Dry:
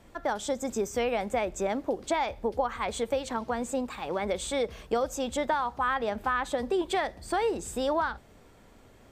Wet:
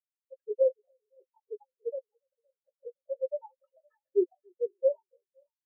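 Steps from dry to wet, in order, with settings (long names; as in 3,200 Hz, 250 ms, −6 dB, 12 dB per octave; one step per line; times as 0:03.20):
three sine waves on the formant tracks
harmonic and percussive parts rebalanced percussive −17 dB
high-shelf EQ 2,100 Hz −11.5 dB
time stretch by phase vocoder 0.62×
log-companded quantiser 2 bits
flanger swept by the level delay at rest 6.2 ms, full sweep at −26.5 dBFS
double-tracking delay 17 ms −7 dB
echo with a time of its own for lows and highs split 500 Hz, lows 284 ms, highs 514 ms, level −8 dB
every bin expanded away from the loudest bin 4 to 1
level +3 dB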